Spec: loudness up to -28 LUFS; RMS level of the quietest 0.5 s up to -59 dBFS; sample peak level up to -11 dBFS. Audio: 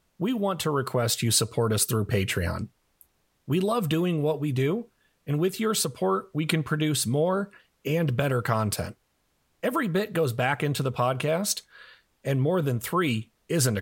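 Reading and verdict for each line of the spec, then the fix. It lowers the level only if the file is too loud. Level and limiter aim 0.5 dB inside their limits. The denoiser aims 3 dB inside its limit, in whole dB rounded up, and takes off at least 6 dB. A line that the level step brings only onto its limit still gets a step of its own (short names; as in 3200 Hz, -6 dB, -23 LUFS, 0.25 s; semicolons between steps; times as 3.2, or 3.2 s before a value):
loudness -26.5 LUFS: fail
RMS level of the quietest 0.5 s -71 dBFS: OK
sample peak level -9.0 dBFS: fail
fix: gain -2 dB; limiter -11.5 dBFS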